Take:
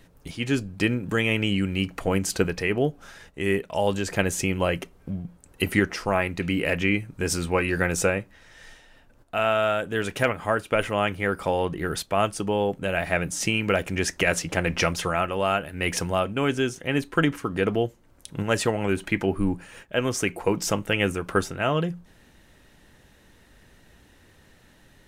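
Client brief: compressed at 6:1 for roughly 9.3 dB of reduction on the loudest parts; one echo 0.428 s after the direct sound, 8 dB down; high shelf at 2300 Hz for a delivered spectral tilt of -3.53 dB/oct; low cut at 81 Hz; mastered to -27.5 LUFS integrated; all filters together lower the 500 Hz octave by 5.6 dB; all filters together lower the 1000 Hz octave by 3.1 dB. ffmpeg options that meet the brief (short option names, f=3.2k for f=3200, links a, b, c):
-af "highpass=81,equalizer=f=500:t=o:g=-6.5,equalizer=f=1k:t=o:g=-3.5,highshelf=f=2.3k:g=4.5,acompressor=threshold=-28dB:ratio=6,aecho=1:1:428:0.398,volume=5dB"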